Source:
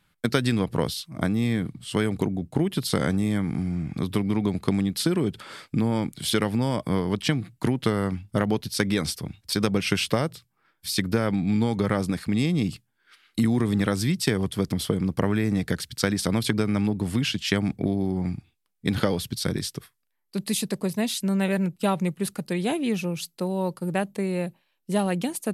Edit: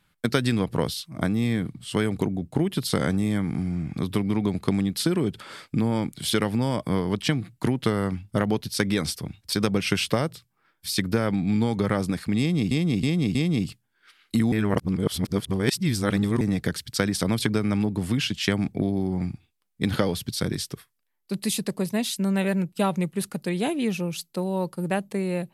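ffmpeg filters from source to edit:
-filter_complex "[0:a]asplit=6[a][b][c][d][e][f];[a]atrim=end=12.712[g];[b]atrim=start=12.388:end=12.712[h];[c]atrim=start=12.388:end=12.712[i];[d]atrim=start=12.388:end=13.562[j];[e]atrim=start=13.558:end=15.452,asetpts=PTS-STARTPTS,areverse[k];[f]atrim=start=15.448[l];[g][h]acrossfade=d=0.004:c1=hsin:c2=hsin[m];[m][i]acrossfade=d=0.004:c1=hsin:c2=hsin[n];[n][j]acrossfade=d=0.004:c1=hsin:c2=hsin[o];[o][k]acrossfade=d=0.004:c1=hsin:c2=hsin[p];[p][l]acrossfade=d=0.004:c1=hsin:c2=hsin"

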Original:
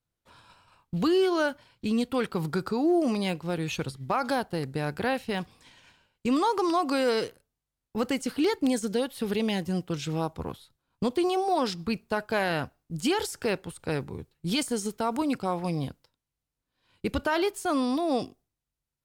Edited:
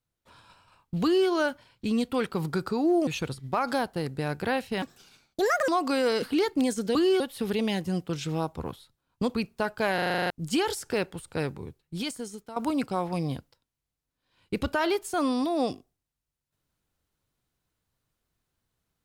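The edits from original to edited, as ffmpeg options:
-filter_complex "[0:a]asplit=18[a][b][c][d][e][f][g][h][i][j][k][l][m][n][o][p][q][r];[a]atrim=end=3.072[s];[b]atrim=start=3.638:end=5.394[t];[c]atrim=start=5.39:end=6.7,asetpts=PTS-STARTPTS,asetrate=67032,aresample=44100,atrim=end_sample=38007,asetpts=PTS-STARTPTS[u];[d]atrim=start=6.696:end=7.242[v];[e]atrim=start=8.278:end=9.012[w];[f]atrim=start=1.038:end=1.292[x];[g]atrim=start=9.008:end=11.152[y];[h]atrim=start=11.858:end=12.502[z];[i]atrim=start=12.458:end=12.502[aa];[j]atrim=start=12.458:end=12.502[ab];[k]atrim=start=12.458:end=12.502[ac];[l]atrim=start=12.458:end=12.502[ad];[m]atrim=start=12.458:end=12.502[ae];[n]atrim=start=12.458:end=12.502[af];[o]atrim=start=12.458:end=12.502[ag];[p]atrim=start=12.458:end=12.502[ah];[q]atrim=start=12.818:end=15.08,asetpts=PTS-STARTPTS,afade=t=out:st=1.102:d=1.16:silence=0.188365[ai];[r]atrim=start=15.08,asetpts=PTS-STARTPTS,afade=t=in:d=0.004:c=hsin:silence=0.188365[aj];[s][t]acrossfade=d=0.004:c1=hsin:c2=hsin[ak];[ak][u]acrossfade=d=0.004:c1=hsin:c2=hsin[al];[al][v]acrossfade=d=0.004:c1=hsin:c2=hsin[am];[am][w]acrossfade=d=0.004:c1=hsin:c2=hsin[an];[an][x]acrossfade=d=0.004:c1=hsin:c2=hsin[ao];[ao][y]acrossfade=d=0.004:c1=hsin:c2=hsin[ap];[ap][z]acrossfade=d=0.004:c1=hsin:c2=hsin[aq];[aq][aa]acrossfade=d=0.004:c1=hsin:c2=hsin[ar];[ar][ab]acrossfade=d=0.004:c1=hsin:c2=hsin[as];[as][ac]acrossfade=d=0.004:c1=hsin:c2=hsin[at];[at][ad]acrossfade=d=0.004:c1=hsin:c2=hsin[au];[au][ae]acrossfade=d=0.004:c1=hsin:c2=hsin[av];[av][af]acrossfade=d=0.004:c1=hsin:c2=hsin[aw];[aw][ag]acrossfade=d=0.004:c1=hsin:c2=hsin[ax];[ax][ah]acrossfade=d=0.004:c1=hsin:c2=hsin[ay];[ai][aj]concat=n=2:v=0:a=1[az];[ay][az]acrossfade=d=0.004:c1=hsin:c2=hsin"

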